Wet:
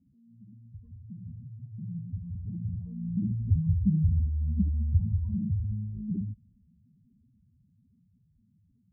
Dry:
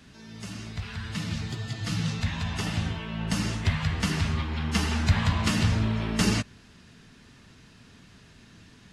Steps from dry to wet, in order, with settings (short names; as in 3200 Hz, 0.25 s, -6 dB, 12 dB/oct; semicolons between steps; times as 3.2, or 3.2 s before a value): spectral contrast raised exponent 3.6; Doppler pass-by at 4, 16 m/s, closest 10 m; inverse Chebyshev low-pass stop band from 1400 Hz, stop band 40 dB; gain +3.5 dB